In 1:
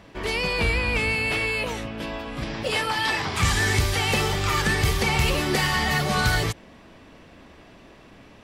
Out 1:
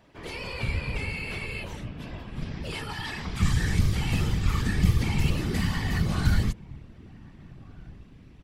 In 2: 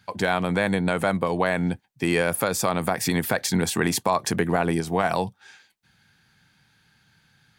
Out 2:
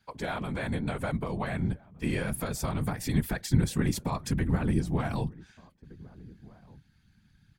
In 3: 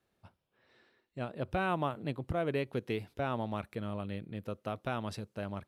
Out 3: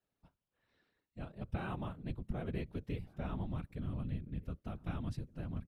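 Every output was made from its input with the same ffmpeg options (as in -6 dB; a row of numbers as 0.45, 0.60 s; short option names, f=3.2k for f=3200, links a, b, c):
-filter_complex "[0:a]asplit=2[a][b];[b]adelay=1516,volume=-22dB,highshelf=f=4k:g=-34.1[c];[a][c]amix=inputs=2:normalize=0,afftfilt=real='hypot(re,im)*cos(2*PI*random(0))':imag='hypot(re,im)*sin(2*PI*random(1))':win_size=512:overlap=0.75,asubboost=boost=6:cutoff=230,volume=-4.5dB"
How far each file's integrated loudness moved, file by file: -5.0, -6.5, -5.5 LU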